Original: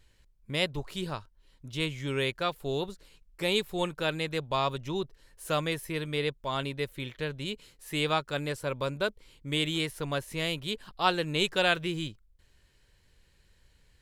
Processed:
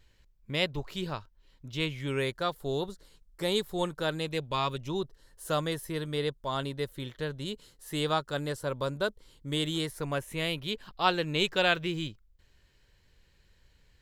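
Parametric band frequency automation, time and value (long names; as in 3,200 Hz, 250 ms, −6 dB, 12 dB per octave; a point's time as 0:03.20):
parametric band −11 dB 0.39 octaves
0:01.87 9,500 Hz
0:02.31 2,500 Hz
0:04.18 2,500 Hz
0:04.63 510 Hz
0:04.92 2,400 Hz
0:09.84 2,400 Hz
0:10.75 9,600 Hz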